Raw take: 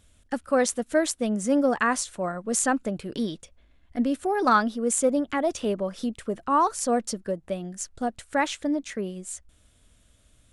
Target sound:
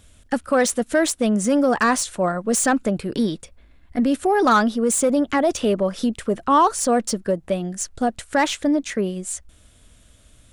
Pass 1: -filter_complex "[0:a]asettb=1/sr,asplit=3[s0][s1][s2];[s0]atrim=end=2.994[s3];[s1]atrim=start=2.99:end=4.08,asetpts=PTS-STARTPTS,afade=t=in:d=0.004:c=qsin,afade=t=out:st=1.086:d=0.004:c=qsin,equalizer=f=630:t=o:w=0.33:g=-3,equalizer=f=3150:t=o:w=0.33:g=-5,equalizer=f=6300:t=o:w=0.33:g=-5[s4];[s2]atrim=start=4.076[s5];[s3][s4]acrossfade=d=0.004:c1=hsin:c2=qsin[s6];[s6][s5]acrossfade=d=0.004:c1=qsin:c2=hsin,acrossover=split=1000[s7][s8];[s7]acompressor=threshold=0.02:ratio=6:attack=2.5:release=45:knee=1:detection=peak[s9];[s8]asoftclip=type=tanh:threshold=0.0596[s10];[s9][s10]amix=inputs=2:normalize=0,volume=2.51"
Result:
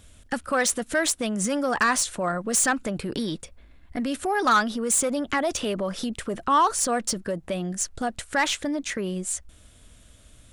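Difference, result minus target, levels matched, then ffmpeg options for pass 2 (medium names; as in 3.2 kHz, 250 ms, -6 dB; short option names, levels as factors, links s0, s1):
compression: peak gain reduction +9 dB
-filter_complex "[0:a]asettb=1/sr,asplit=3[s0][s1][s2];[s0]atrim=end=2.994[s3];[s1]atrim=start=2.99:end=4.08,asetpts=PTS-STARTPTS,afade=t=in:d=0.004:c=qsin,afade=t=out:st=1.086:d=0.004:c=qsin,equalizer=f=630:t=o:w=0.33:g=-3,equalizer=f=3150:t=o:w=0.33:g=-5,equalizer=f=6300:t=o:w=0.33:g=-5[s4];[s2]atrim=start=4.076[s5];[s3][s4]acrossfade=d=0.004:c1=hsin:c2=qsin[s6];[s6][s5]acrossfade=d=0.004:c1=qsin:c2=hsin,acrossover=split=1000[s7][s8];[s7]acompressor=threshold=0.0708:ratio=6:attack=2.5:release=45:knee=1:detection=peak[s9];[s8]asoftclip=type=tanh:threshold=0.0596[s10];[s9][s10]amix=inputs=2:normalize=0,volume=2.51"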